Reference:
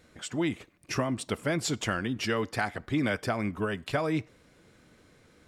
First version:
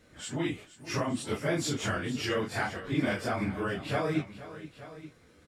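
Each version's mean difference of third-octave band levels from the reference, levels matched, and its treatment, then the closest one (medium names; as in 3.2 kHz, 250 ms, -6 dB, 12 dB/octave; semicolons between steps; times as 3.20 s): 5.0 dB: phase randomisation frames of 100 ms; on a send: multi-tap echo 472/877 ms -15.5/-16.5 dB; on the sum: trim -1 dB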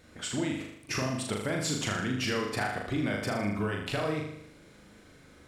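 6.5 dB: compression, threshold -31 dBFS, peak gain reduction 8.5 dB; on a send: flutter echo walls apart 6.7 m, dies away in 0.74 s; on the sum: trim +1.5 dB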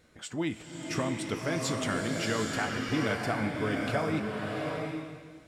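9.0 dB: feedback comb 54 Hz, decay 0.25 s, mix 50%; swelling reverb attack 760 ms, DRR 0 dB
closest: first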